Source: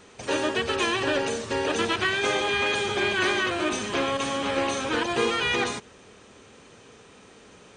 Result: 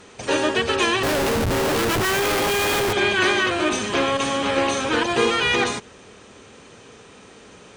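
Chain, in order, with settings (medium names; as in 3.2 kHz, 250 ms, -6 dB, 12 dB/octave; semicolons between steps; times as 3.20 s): Chebyshev shaper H 6 -35 dB, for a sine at -13 dBFS; 1.03–2.93 s: Schmitt trigger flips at -30 dBFS; trim +5 dB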